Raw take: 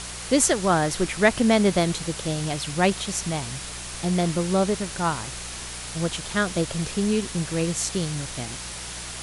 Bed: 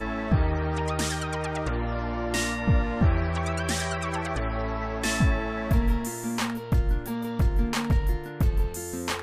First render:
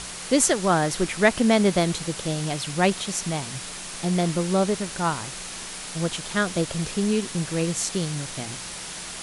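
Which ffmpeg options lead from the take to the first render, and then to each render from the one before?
-af "bandreject=f=60:t=h:w=4,bandreject=f=120:t=h:w=4"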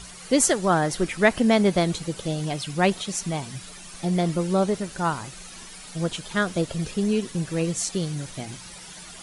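-af "afftdn=nr=11:nf=-36"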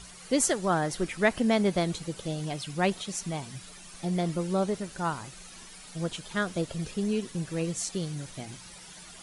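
-af "volume=-5.5dB"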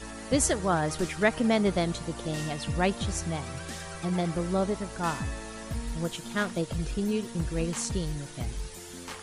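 -filter_complex "[1:a]volume=-11.5dB[a];[0:a][a]amix=inputs=2:normalize=0"

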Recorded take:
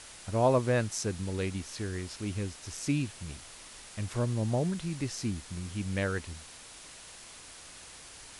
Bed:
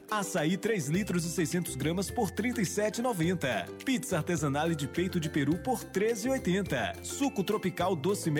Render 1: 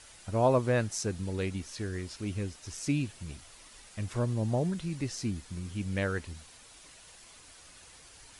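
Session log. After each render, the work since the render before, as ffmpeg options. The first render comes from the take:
-af "afftdn=nr=7:nf=-50"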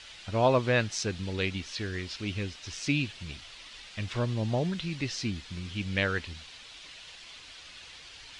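-af "lowpass=5.2k,equalizer=f=3.3k:w=0.7:g=12.5"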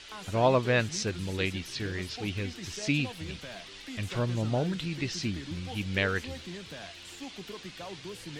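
-filter_complex "[1:a]volume=-13.5dB[a];[0:a][a]amix=inputs=2:normalize=0"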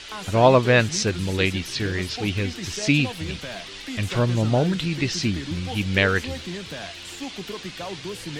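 -af "volume=8.5dB"

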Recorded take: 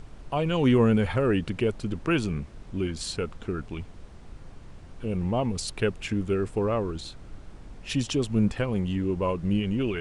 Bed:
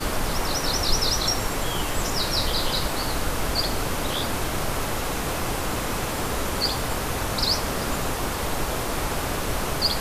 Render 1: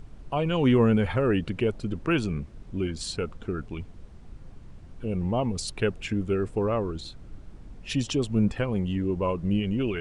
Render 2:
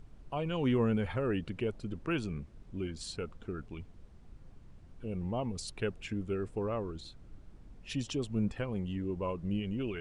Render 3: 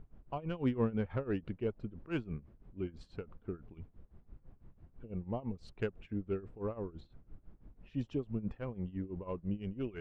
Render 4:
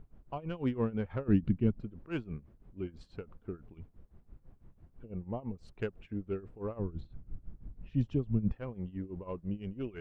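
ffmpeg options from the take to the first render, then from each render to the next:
-af "afftdn=nr=6:nf=-46"
-af "volume=-8.5dB"
-af "tremolo=f=6:d=0.87,adynamicsmooth=sensitivity=1.5:basefreq=2k"
-filter_complex "[0:a]asettb=1/sr,asplit=3[a][b][c];[a]atrim=end=1.284[d];[b]atrim=start=1.28:end=1.81,asetpts=PTS-STARTPTS,afade=t=in:d=0.004:c=qsin,afade=t=out:st=0.526:d=0.004:c=qsin,lowshelf=f=330:t=q:w=1.5:g=10.5[e];[c]atrim=start=1.806[f];[d][e]acrossfade=d=0.004:c1=hsin:c2=qsin[g];[g][f]acrossfade=d=0.004:c1=qsin:c2=hsin,asettb=1/sr,asplit=3[h][i][j];[h]atrim=end=5.064[k];[i]atrim=start=5.06:end=5.73,asetpts=PTS-STARTPTS,afade=t=in:d=0.004:c=qsin,afade=t=out:st=0.666:d=0.004:c=qsin,equalizer=f=3.9k:t=o:w=1:g=-6[l];[j]atrim=start=5.726[m];[k][l]acrossfade=d=0.004:c1=hsin:c2=qsin[n];[n][m]acrossfade=d=0.004:c1=qsin:c2=hsin,asettb=1/sr,asplit=3[o][p][q];[o]atrim=end=6.794[r];[p]atrim=start=6.79:end=8.53,asetpts=PTS-STARTPTS,afade=t=in:d=0.004:c=qsin,afade=t=out:st=1.736:d=0.004:c=qsin,bass=f=250:g=10,treble=f=4k:g=-2[s];[q]atrim=start=8.526[t];[r][s]acrossfade=d=0.004:c1=hsin:c2=qsin[u];[u][t]acrossfade=d=0.004:c1=qsin:c2=hsin"

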